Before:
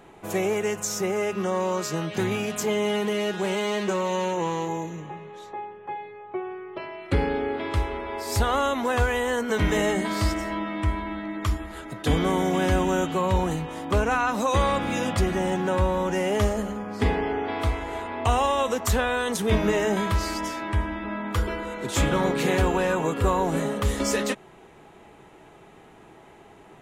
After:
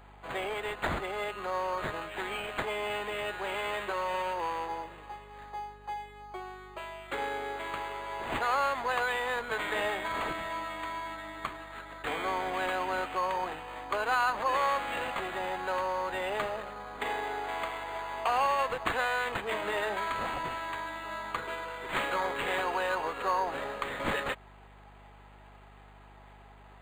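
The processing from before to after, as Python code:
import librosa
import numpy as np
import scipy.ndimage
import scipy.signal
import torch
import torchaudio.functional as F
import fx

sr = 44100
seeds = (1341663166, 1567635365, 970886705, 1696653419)

y = scipy.signal.sosfilt(scipy.signal.butter(2, 830.0, 'highpass', fs=sr, output='sos'), x)
y = fx.add_hum(y, sr, base_hz=50, snr_db=23)
y = np.interp(np.arange(len(y)), np.arange(len(y))[::8], y[::8])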